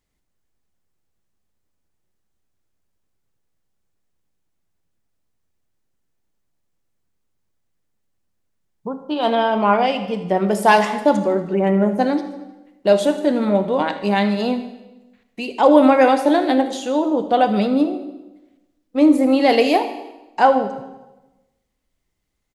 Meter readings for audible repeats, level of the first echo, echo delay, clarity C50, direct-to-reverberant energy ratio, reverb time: 4, -17.5 dB, 78 ms, 10.0 dB, 8.5 dB, 1.0 s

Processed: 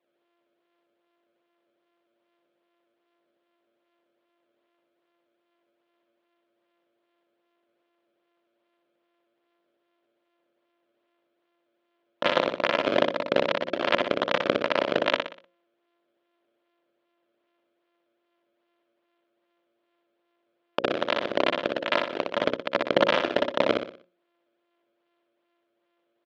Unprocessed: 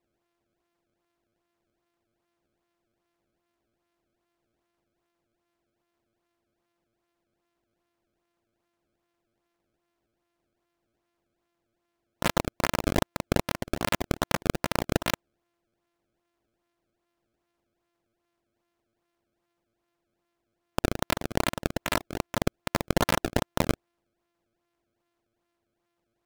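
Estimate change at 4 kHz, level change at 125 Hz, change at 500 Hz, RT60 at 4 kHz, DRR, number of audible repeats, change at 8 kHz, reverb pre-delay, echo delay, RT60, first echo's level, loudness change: +4.5 dB, -11.5 dB, +7.0 dB, none, none, 4, under -15 dB, none, 61 ms, none, -4.5 dB, +3.5 dB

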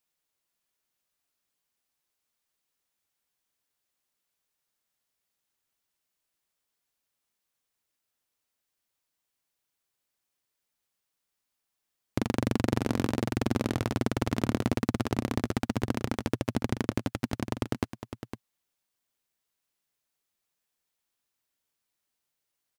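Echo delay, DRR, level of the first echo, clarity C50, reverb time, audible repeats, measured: 0.507 s, none, -10.0 dB, none, none, 1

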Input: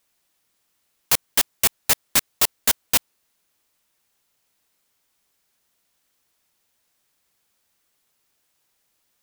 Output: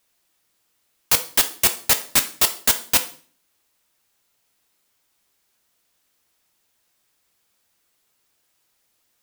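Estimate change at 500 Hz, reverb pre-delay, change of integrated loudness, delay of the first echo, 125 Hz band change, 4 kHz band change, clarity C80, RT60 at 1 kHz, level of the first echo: +2.0 dB, 3 ms, +1.5 dB, none, +1.0 dB, +2.0 dB, 18.5 dB, 0.40 s, none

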